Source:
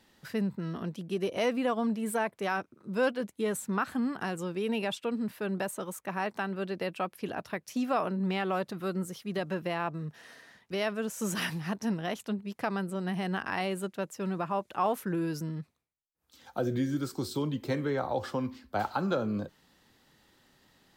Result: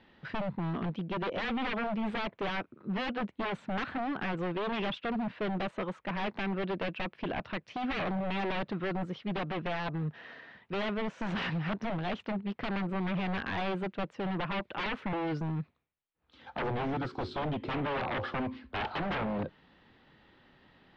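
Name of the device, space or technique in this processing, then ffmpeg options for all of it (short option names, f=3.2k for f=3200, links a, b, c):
synthesiser wavefolder: -af "aeval=exprs='0.0266*(abs(mod(val(0)/0.0266+3,4)-2)-1)':c=same,lowpass=f=3.3k:w=0.5412,lowpass=f=3.3k:w=1.3066,volume=4dB"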